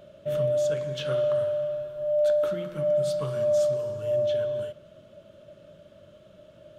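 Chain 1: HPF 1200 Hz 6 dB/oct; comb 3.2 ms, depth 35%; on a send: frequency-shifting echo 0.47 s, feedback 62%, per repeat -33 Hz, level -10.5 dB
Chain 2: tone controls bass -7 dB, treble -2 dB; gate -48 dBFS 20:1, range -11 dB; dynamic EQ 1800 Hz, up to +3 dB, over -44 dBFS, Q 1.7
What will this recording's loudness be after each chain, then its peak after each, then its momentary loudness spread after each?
-31.0, -26.5 LUFS; -19.0, -16.0 dBFS; 17, 7 LU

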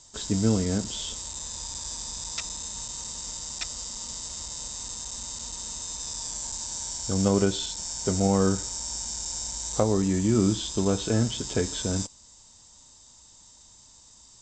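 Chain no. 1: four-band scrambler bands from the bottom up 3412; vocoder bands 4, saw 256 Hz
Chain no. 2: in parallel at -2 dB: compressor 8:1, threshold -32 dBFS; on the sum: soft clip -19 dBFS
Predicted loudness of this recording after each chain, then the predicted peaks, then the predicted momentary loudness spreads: -26.5, -28.0 LUFS; -5.5, -19.0 dBFS; 15, 20 LU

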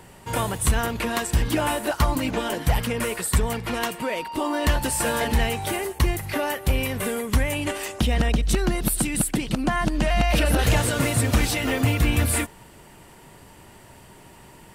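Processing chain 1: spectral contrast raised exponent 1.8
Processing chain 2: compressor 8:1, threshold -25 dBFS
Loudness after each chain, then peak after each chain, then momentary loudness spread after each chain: -25.0, -29.5 LUFS; -10.5, -12.0 dBFS; 5, 19 LU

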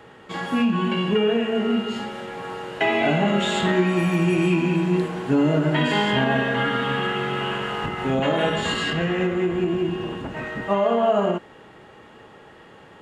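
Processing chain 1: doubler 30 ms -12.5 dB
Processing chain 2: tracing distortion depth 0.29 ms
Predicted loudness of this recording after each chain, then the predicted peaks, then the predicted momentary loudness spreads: -22.0, -22.0 LUFS; -8.5, -9.0 dBFS; 10, 11 LU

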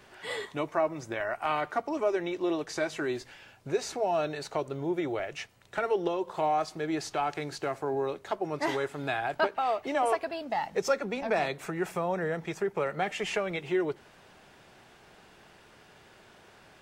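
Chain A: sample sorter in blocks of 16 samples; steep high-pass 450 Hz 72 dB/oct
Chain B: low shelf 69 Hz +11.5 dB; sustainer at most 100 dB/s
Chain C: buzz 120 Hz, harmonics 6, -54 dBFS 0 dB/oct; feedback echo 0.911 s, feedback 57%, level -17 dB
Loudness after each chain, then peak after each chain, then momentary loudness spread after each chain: -31.5, -30.5, -31.5 LUFS; -9.0, -13.5, -13.0 dBFS; 9, 6, 18 LU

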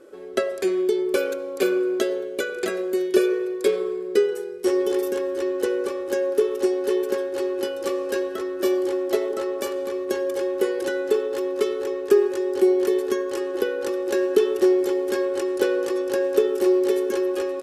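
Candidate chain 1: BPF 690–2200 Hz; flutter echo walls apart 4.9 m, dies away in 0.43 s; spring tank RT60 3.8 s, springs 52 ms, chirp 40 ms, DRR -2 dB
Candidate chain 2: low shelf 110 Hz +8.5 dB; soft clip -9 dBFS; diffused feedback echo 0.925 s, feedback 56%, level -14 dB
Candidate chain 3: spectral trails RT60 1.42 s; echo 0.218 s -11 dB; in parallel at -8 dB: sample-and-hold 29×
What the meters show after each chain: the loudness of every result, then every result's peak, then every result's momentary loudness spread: -29.5, -23.0, -18.5 LUFS; -13.0, -9.5, -2.5 dBFS; 5, 6, 7 LU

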